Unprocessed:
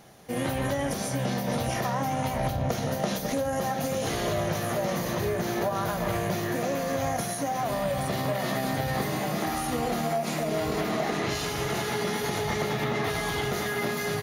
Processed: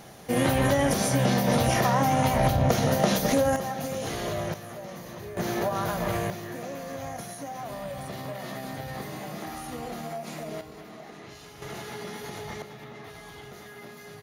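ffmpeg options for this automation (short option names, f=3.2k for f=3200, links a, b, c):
-af "asetnsamples=n=441:p=0,asendcmd='3.56 volume volume -3dB;4.54 volume volume -11.5dB;5.37 volume volume 0dB;6.3 volume volume -8dB;10.61 volume volume -16.5dB;11.62 volume volume -9dB;12.62 volume volume -15.5dB',volume=5.5dB"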